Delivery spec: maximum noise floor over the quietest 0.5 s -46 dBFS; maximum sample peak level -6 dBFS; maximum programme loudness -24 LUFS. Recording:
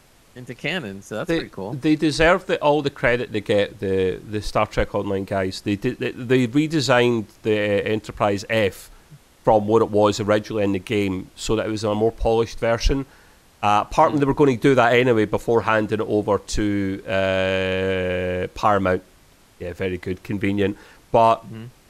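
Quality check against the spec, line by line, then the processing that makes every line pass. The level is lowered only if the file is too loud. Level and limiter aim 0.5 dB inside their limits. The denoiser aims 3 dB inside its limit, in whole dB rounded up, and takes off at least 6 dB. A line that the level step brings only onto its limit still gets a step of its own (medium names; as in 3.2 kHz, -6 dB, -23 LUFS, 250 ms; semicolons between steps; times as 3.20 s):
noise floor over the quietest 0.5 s -53 dBFS: pass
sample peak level -4.5 dBFS: fail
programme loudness -21.0 LUFS: fail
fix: trim -3.5 dB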